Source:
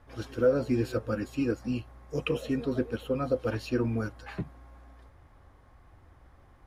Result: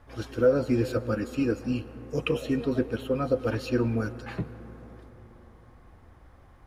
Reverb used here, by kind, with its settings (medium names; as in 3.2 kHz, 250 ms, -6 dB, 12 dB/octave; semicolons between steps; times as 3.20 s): algorithmic reverb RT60 4.2 s, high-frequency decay 0.3×, pre-delay 80 ms, DRR 15.5 dB; trim +2.5 dB